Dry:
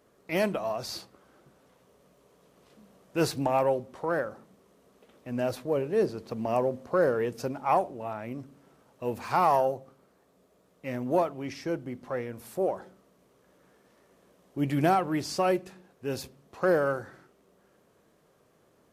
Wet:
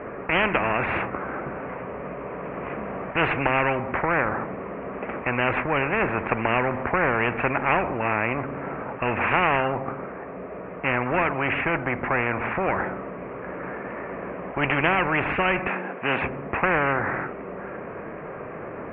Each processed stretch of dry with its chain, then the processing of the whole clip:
0:15.67–0:16.22: Chebyshev high-pass filter 200 Hz, order 3 + parametric band 3,400 Hz +6 dB 0.81 octaves
whole clip: Butterworth low-pass 2,500 Hz 72 dB per octave; low-shelf EQ 390 Hz −5 dB; every bin compressed towards the loudest bin 4 to 1; level +8 dB

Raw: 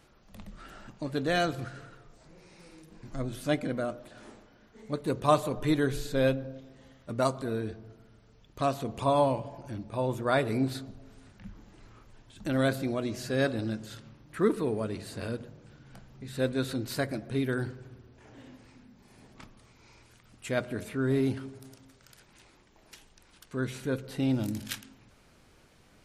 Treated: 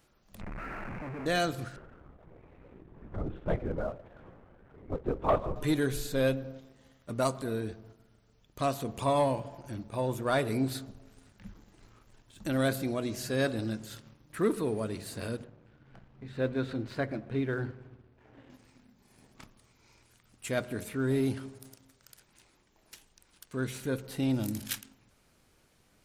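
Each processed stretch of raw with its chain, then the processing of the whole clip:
0:00.41–0:01.26: sign of each sample alone + Butterworth low-pass 2,500 Hz 72 dB per octave
0:01.76–0:05.56: upward compression, threshold −42 dBFS + low-pass filter 1,400 Hz + linear-prediction vocoder at 8 kHz whisper
0:15.44–0:18.50: low-pass filter 2,500 Hz + mains-hum notches 50/100/150/200/250 Hz
whole clip: high-shelf EQ 8,600 Hz +10.5 dB; leveller curve on the samples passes 1; level −5 dB

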